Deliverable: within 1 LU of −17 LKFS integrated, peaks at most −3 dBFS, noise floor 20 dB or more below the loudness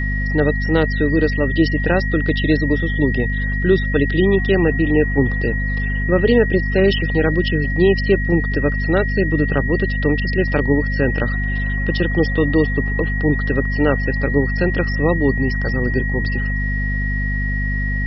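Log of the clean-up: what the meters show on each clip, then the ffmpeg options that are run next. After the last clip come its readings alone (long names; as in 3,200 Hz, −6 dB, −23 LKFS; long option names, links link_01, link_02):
mains hum 50 Hz; hum harmonics up to 250 Hz; level of the hum −19 dBFS; interfering tone 1,900 Hz; level of the tone −24 dBFS; integrated loudness −18.0 LKFS; sample peak −2.5 dBFS; target loudness −17.0 LKFS
→ -af "bandreject=frequency=50:width_type=h:width=6,bandreject=frequency=100:width_type=h:width=6,bandreject=frequency=150:width_type=h:width=6,bandreject=frequency=200:width_type=h:width=6,bandreject=frequency=250:width_type=h:width=6"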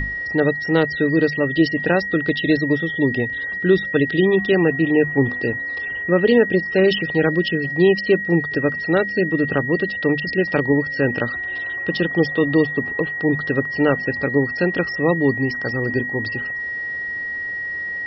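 mains hum none found; interfering tone 1,900 Hz; level of the tone −24 dBFS
→ -af "bandreject=frequency=1900:width=30"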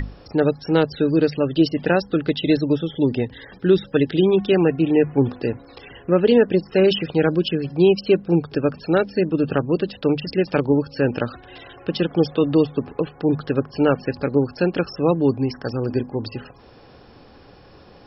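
interfering tone none found; integrated loudness −20.5 LKFS; sample peak −4.5 dBFS; target loudness −17.0 LKFS
→ -af "volume=3.5dB,alimiter=limit=-3dB:level=0:latency=1"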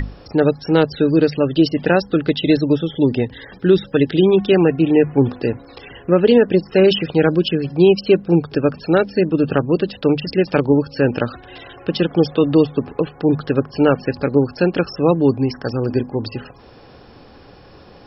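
integrated loudness −17.0 LKFS; sample peak −3.0 dBFS; background noise floor −44 dBFS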